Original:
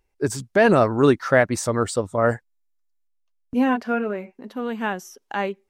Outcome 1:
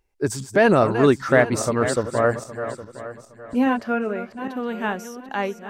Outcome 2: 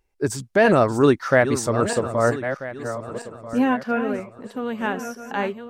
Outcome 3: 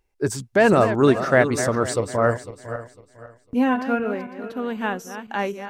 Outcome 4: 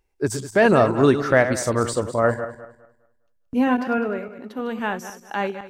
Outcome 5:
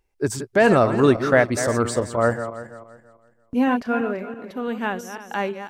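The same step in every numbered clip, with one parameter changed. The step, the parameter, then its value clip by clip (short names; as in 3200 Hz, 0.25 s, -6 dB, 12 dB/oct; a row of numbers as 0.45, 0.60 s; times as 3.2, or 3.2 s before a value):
regenerating reverse delay, time: 0.407, 0.644, 0.251, 0.102, 0.167 s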